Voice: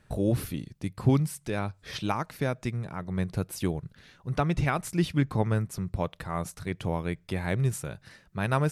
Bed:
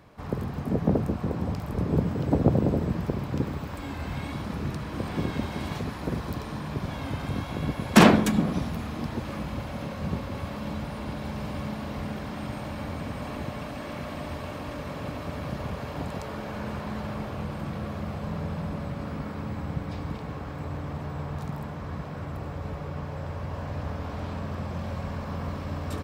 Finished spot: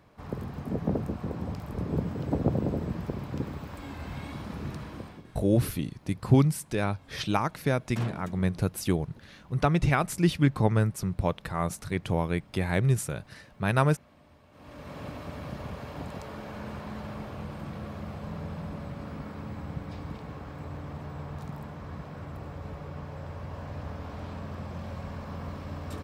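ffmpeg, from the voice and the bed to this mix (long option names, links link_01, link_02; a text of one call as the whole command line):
ffmpeg -i stem1.wav -i stem2.wav -filter_complex "[0:a]adelay=5250,volume=2.5dB[link_01];[1:a]volume=13dB,afade=type=out:start_time=4.83:duration=0.4:silence=0.125893,afade=type=in:start_time=14.51:duration=0.49:silence=0.125893[link_02];[link_01][link_02]amix=inputs=2:normalize=0" out.wav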